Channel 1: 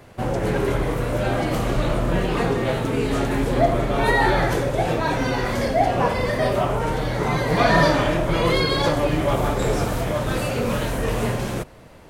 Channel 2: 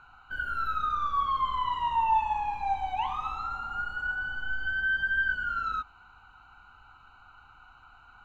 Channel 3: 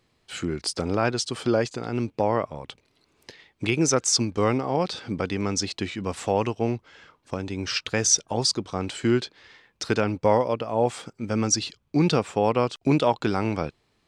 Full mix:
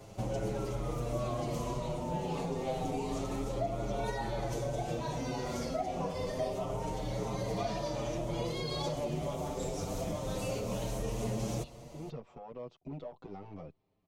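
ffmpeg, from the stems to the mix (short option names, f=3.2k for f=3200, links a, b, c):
-filter_complex "[0:a]acompressor=threshold=-28dB:ratio=10,volume=-2.5dB[a];[1:a]volume=-7dB[b];[2:a]acompressor=threshold=-28dB:ratio=6,aeval=exprs='clip(val(0),-1,0.0282)':c=same,volume=-6dB[c];[b][c]amix=inputs=2:normalize=0,lowpass=1.8k,alimiter=level_in=10.5dB:limit=-24dB:level=0:latency=1:release=24,volume=-10.5dB,volume=0dB[d];[a][d]amix=inputs=2:normalize=0,equalizer=f=160:t=o:w=0.67:g=4,equalizer=f=630:t=o:w=0.67:g=4,equalizer=f=1.6k:t=o:w=0.67:g=-12,equalizer=f=6.3k:t=o:w=0.67:g=9,asplit=2[e][f];[f]adelay=7.1,afreqshift=0.28[g];[e][g]amix=inputs=2:normalize=1"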